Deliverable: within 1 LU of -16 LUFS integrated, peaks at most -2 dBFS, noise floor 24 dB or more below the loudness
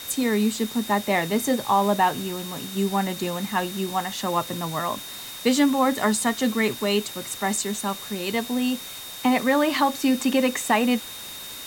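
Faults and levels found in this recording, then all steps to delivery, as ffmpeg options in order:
steady tone 3700 Hz; tone level -39 dBFS; noise floor -37 dBFS; noise floor target -48 dBFS; loudness -24.0 LUFS; peak -7.0 dBFS; loudness target -16.0 LUFS
-> -af "bandreject=f=3.7k:w=30"
-af "afftdn=nr=11:nf=-37"
-af "volume=8dB,alimiter=limit=-2dB:level=0:latency=1"

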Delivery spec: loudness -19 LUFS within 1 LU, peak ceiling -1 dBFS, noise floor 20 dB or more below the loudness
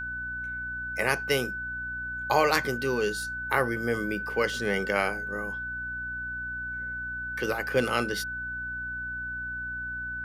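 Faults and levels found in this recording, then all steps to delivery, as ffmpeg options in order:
hum 60 Hz; harmonics up to 300 Hz; hum level -42 dBFS; steady tone 1500 Hz; tone level -32 dBFS; loudness -29.5 LUFS; peak -7.5 dBFS; loudness target -19.0 LUFS
-> -af "bandreject=f=60:t=h:w=6,bandreject=f=120:t=h:w=6,bandreject=f=180:t=h:w=6,bandreject=f=240:t=h:w=6,bandreject=f=300:t=h:w=6"
-af "bandreject=f=1.5k:w=30"
-af "volume=10.5dB,alimiter=limit=-1dB:level=0:latency=1"

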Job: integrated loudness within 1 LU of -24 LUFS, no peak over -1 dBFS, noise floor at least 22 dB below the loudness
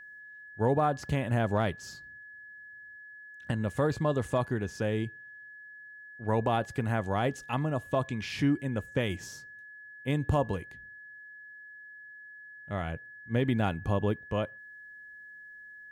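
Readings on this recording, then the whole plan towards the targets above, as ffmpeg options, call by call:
steady tone 1700 Hz; tone level -46 dBFS; loudness -31.0 LUFS; peak -16.0 dBFS; loudness target -24.0 LUFS
-> -af "bandreject=f=1.7k:w=30"
-af "volume=7dB"

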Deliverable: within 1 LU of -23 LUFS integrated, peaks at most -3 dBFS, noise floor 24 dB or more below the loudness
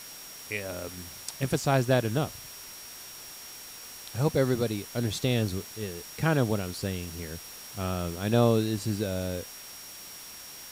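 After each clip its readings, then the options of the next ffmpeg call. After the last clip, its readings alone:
steady tone 5600 Hz; tone level -47 dBFS; noise floor -45 dBFS; noise floor target -54 dBFS; loudness -29.5 LUFS; peak -11.0 dBFS; loudness target -23.0 LUFS
-> -af "bandreject=f=5.6k:w=30"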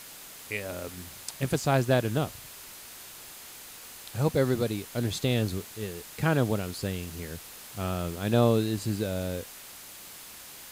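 steady tone none; noise floor -46 dBFS; noise floor target -54 dBFS
-> -af "afftdn=nr=8:nf=-46"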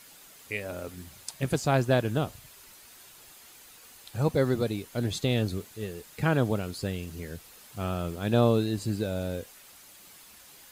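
noise floor -52 dBFS; noise floor target -53 dBFS
-> -af "afftdn=nr=6:nf=-52"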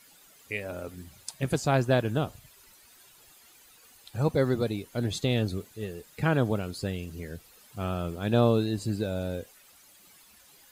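noise floor -57 dBFS; loudness -29.0 LUFS; peak -11.5 dBFS; loudness target -23.0 LUFS
-> -af "volume=6dB"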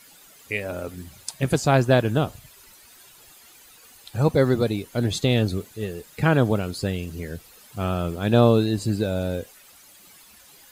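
loudness -23.0 LUFS; peak -5.5 dBFS; noise floor -51 dBFS

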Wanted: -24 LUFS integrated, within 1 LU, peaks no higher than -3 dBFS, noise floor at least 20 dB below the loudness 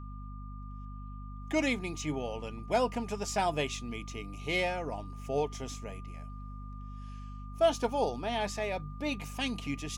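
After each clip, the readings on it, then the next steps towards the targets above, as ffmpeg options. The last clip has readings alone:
hum 50 Hz; harmonics up to 250 Hz; hum level -40 dBFS; steady tone 1200 Hz; tone level -51 dBFS; loudness -33.5 LUFS; peak -15.5 dBFS; loudness target -24.0 LUFS
-> -af "bandreject=f=50:t=h:w=6,bandreject=f=100:t=h:w=6,bandreject=f=150:t=h:w=6,bandreject=f=200:t=h:w=6,bandreject=f=250:t=h:w=6"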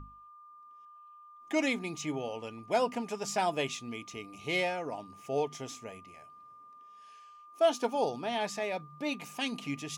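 hum none; steady tone 1200 Hz; tone level -51 dBFS
-> -af "bandreject=f=1.2k:w=30"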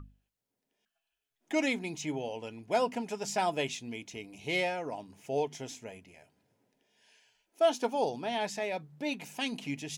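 steady tone none; loudness -33.5 LUFS; peak -16.5 dBFS; loudness target -24.0 LUFS
-> -af "volume=9.5dB"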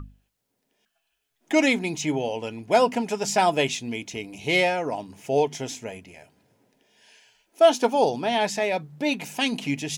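loudness -24.0 LUFS; peak -7.0 dBFS; noise floor -77 dBFS

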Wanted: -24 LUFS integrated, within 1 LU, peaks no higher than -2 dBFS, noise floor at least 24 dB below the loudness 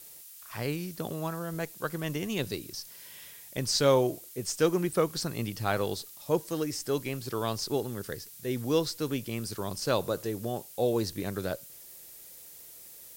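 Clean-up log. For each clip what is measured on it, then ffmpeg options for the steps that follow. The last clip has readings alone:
noise floor -49 dBFS; noise floor target -56 dBFS; loudness -31.5 LUFS; peak -12.0 dBFS; loudness target -24.0 LUFS
-> -af "afftdn=nr=7:nf=-49"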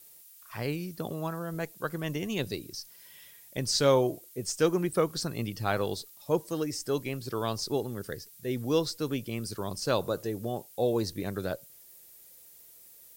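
noise floor -54 dBFS; noise floor target -56 dBFS
-> -af "afftdn=nr=6:nf=-54"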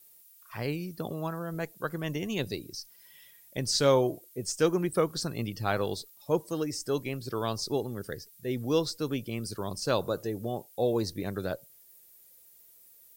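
noise floor -57 dBFS; loudness -31.5 LUFS; peak -12.0 dBFS; loudness target -24.0 LUFS
-> -af "volume=7.5dB"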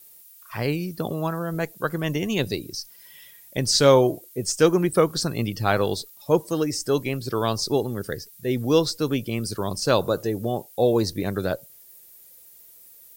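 loudness -24.0 LUFS; peak -4.5 dBFS; noise floor -50 dBFS

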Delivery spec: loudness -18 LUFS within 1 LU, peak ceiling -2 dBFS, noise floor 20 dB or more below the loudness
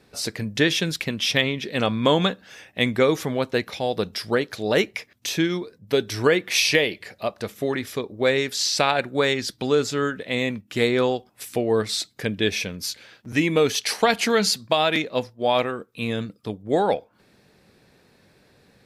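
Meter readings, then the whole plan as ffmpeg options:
loudness -23.0 LUFS; peak -4.5 dBFS; loudness target -18.0 LUFS
-> -af "volume=5dB,alimiter=limit=-2dB:level=0:latency=1"

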